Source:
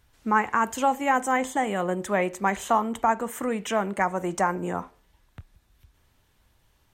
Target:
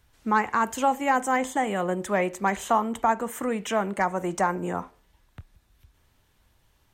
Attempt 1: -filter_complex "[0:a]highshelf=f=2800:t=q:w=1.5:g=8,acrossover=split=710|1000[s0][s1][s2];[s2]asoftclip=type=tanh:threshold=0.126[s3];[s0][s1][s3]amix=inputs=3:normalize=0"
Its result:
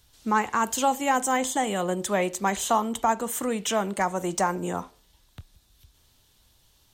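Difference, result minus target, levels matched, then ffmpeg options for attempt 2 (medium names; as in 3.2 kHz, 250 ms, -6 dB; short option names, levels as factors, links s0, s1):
4 kHz band +6.5 dB
-filter_complex "[0:a]acrossover=split=710|1000[s0][s1][s2];[s2]asoftclip=type=tanh:threshold=0.126[s3];[s0][s1][s3]amix=inputs=3:normalize=0"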